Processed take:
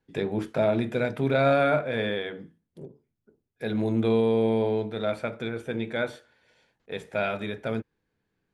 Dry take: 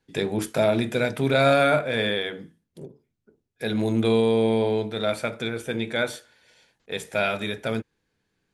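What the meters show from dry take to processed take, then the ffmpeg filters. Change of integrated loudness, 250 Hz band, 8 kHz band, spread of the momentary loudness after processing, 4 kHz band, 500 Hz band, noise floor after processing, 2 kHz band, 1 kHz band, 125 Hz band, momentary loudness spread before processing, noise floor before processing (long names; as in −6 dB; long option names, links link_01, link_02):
−2.5 dB, −2.0 dB, below −15 dB, 11 LU, −8.5 dB, −2.5 dB, −79 dBFS, −5.0 dB, −3.0 dB, −2.0 dB, 12 LU, −76 dBFS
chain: -filter_complex "[0:a]highshelf=frequency=3200:gain=-11.5,acrossover=split=5100[link_01][link_02];[link_02]alimiter=level_in=21.5dB:limit=-24dB:level=0:latency=1:release=491,volume=-21.5dB[link_03];[link_01][link_03]amix=inputs=2:normalize=0,volume=-2dB"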